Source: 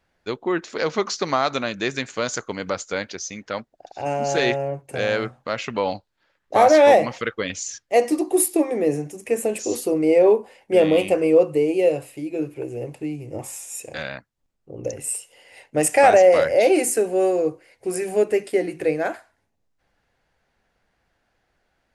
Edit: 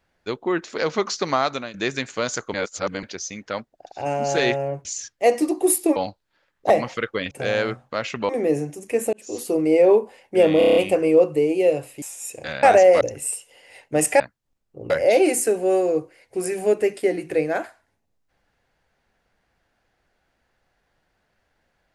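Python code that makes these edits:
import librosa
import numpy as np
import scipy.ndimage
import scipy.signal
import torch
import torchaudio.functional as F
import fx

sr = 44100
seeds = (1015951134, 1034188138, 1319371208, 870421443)

y = fx.edit(x, sr, fx.fade_out_to(start_s=1.42, length_s=0.32, floor_db=-12.5),
    fx.reverse_span(start_s=2.54, length_s=0.49),
    fx.swap(start_s=4.85, length_s=0.98, other_s=7.55, other_length_s=1.11),
    fx.cut(start_s=6.57, length_s=0.37),
    fx.fade_in_span(start_s=9.5, length_s=0.41),
    fx.stutter(start_s=10.95, slice_s=0.03, count=7),
    fx.cut(start_s=12.21, length_s=1.31),
    fx.swap(start_s=14.13, length_s=0.7, other_s=16.02, other_length_s=0.38), tone=tone)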